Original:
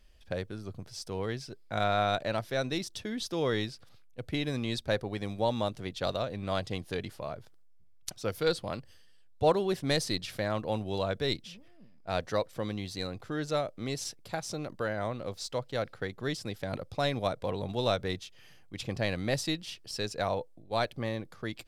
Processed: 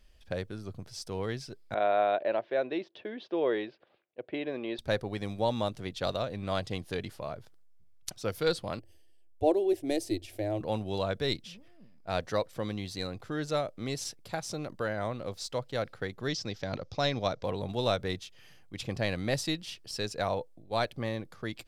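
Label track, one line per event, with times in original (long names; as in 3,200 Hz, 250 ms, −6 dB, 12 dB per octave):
1.740000	4.790000	loudspeaker in its box 360–2,800 Hz, peaks and dips at 360 Hz +8 dB, 600 Hz +6 dB, 1,300 Hz −6 dB, 2,100 Hz −3 dB
8.790000	10.610000	drawn EQ curve 110 Hz 0 dB, 160 Hz −28 dB, 330 Hz +9 dB, 480 Hz −4 dB, 680 Hz +2 dB, 1,200 Hz −20 dB, 2,400 Hz −6 dB, 4,200 Hz −12 dB, 8,200 Hz −4 dB, 14,000 Hz −1 dB
16.280000	17.430000	high shelf with overshoot 7,600 Hz −10.5 dB, Q 3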